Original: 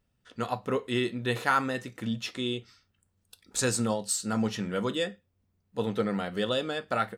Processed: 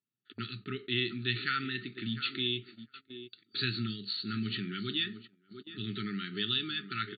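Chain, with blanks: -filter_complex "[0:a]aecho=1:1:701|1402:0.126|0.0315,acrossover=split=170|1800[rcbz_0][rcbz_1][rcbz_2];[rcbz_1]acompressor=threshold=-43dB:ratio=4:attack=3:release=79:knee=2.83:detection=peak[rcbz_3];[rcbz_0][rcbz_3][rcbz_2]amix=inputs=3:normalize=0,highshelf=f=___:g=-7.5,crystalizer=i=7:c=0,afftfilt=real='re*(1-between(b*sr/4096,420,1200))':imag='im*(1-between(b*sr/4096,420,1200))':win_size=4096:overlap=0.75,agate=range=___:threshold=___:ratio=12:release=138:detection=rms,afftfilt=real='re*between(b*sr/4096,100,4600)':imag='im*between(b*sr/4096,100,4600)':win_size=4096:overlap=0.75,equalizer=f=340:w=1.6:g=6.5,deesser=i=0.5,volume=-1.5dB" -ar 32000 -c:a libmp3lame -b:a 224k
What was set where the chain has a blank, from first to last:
2000, -19dB, -45dB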